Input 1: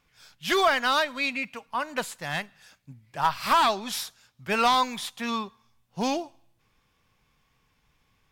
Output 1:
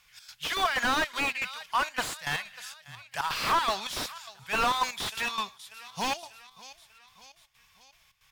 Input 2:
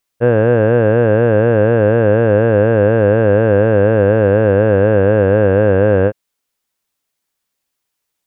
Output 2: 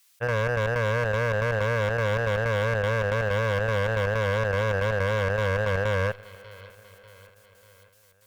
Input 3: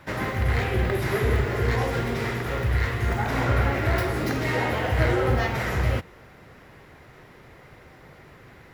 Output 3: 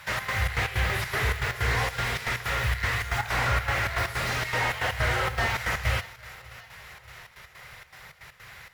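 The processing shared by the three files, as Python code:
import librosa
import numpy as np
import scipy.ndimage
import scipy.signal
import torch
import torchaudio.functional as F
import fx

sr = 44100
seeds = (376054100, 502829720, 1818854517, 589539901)

p1 = fx.step_gate(x, sr, bpm=159, pattern='xx.xx.x.x', floor_db=-12.0, edge_ms=4.5)
p2 = fx.cheby_harmonics(p1, sr, harmonics=(5,), levels_db=(-14,), full_scale_db=-2.0)
p3 = fx.low_shelf(p2, sr, hz=73.0, db=-10.0)
p4 = fx.over_compress(p3, sr, threshold_db=-18.0, ratio=-1.0)
p5 = p3 + F.gain(torch.from_numpy(p4), 1.5).numpy()
p6 = fx.tone_stack(p5, sr, knobs='10-0-10')
p7 = p6 + fx.echo_feedback(p6, sr, ms=592, feedback_pct=54, wet_db=-23, dry=0)
p8 = fx.slew_limit(p7, sr, full_power_hz=120.0)
y = F.gain(torch.from_numpy(p8), -1.0).numpy()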